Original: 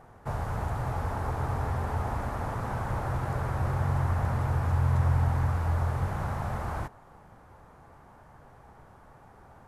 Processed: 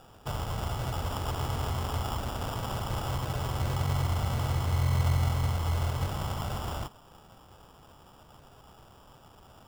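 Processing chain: CVSD 16 kbps; sample-and-hold 21×; gain -1 dB

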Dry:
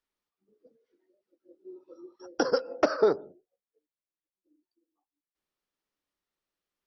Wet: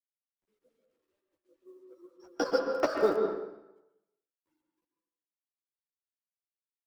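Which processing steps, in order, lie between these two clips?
G.711 law mismatch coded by A; chorus voices 4, 0.85 Hz, delay 12 ms, depth 2 ms; reverb RT60 0.90 s, pre-delay 0.112 s, DRR 3 dB; 2.71–3.16 crackle 23/s -> 99/s -38 dBFS

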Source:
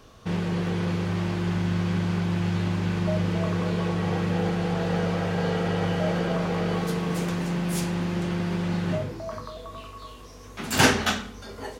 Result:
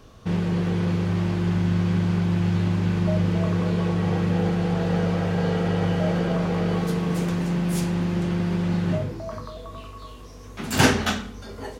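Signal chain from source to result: low shelf 380 Hz +5.5 dB; gain -1 dB

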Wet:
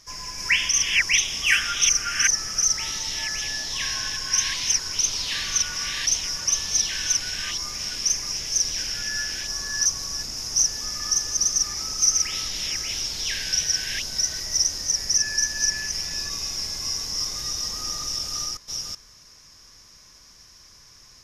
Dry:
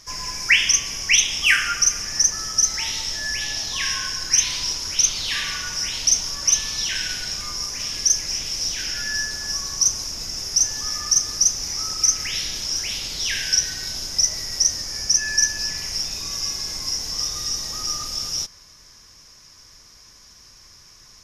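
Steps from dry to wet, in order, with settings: reverse delay 0.379 s, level 0 dB; gain -5 dB

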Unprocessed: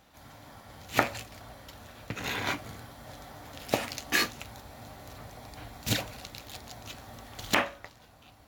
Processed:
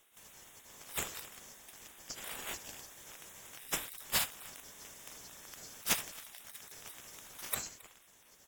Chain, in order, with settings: band-swap scrambler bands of 4000 Hz; echo 0.269 s -23 dB; spectral gate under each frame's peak -20 dB weak; gain +5 dB

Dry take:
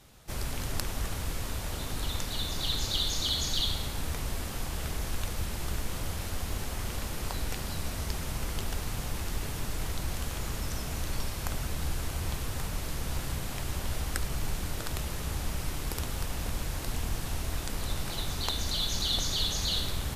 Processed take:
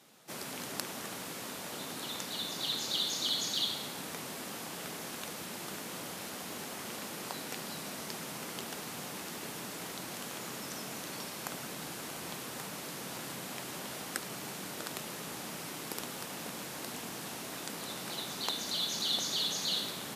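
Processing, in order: HPF 180 Hz 24 dB/oct; gain -2 dB

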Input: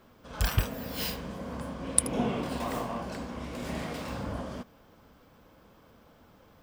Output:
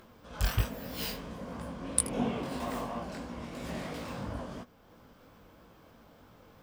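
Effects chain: upward compressor, threshold -47 dBFS; chorus 3 Hz, delay 17 ms, depth 5.4 ms

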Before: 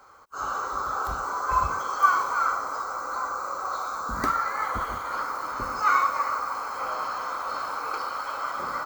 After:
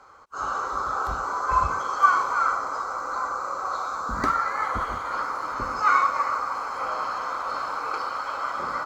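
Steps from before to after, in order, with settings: air absorption 50 m; gain +2 dB

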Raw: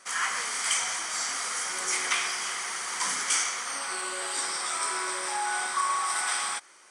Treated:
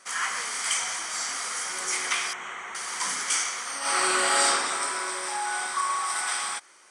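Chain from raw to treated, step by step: 2.33–2.75 running mean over 9 samples; 3.79–4.45 reverb throw, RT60 2 s, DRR -11 dB

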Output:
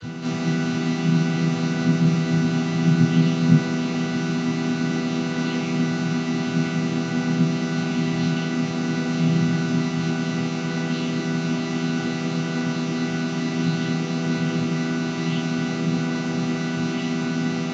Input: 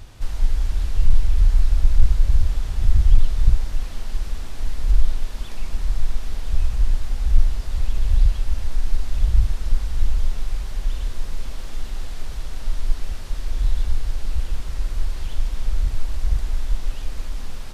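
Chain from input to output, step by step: chord vocoder minor triad, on E3; tilt shelf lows -6 dB, about 1100 Hz; reverb, pre-delay 3 ms, DRR -14 dB

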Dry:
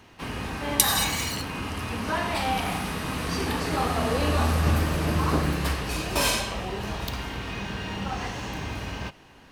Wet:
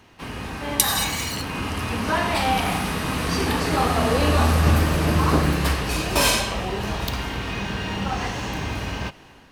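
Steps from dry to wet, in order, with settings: AGC gain up to 5 dB

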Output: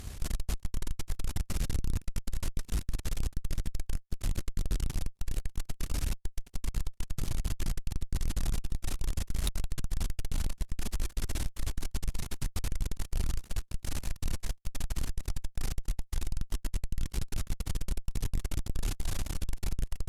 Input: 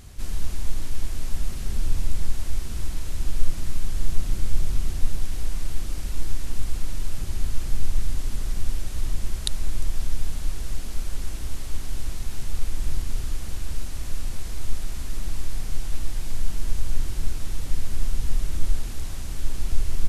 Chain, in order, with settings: tube stage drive 31 dB, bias 0.75; gain +6.5 dB

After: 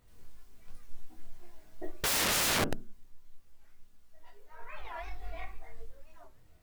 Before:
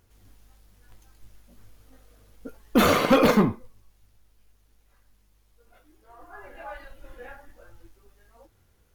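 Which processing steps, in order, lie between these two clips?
chorus voices 6, 0.25 Hz, delay 30 ms, depth 3.7 ms; shoebox room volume 220 m³, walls furnished, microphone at 0.88 m; wrapped overs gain 23.5 dB; speed mistake 33 rpm record played at 45 rpm; record warp 45 rpm, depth 250 cents

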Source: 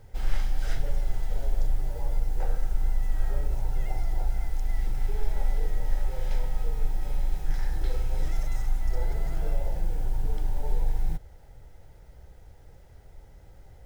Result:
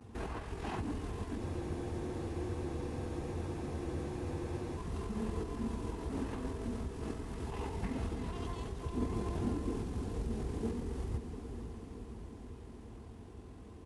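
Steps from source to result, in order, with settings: minimum comb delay 4.5 ms; pitch shift -11.5 st; high shelf 2000 Hz -10 dB; diffused feedback echo 0.503 s, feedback 68%, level -12 dB; compressor, threshold -26 dBFS, peak gain reduction 8.5 dB; HPF 62 Hz 24 dB/oct; spectral freeze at 1.41, 3.36 s; gain +8 dB

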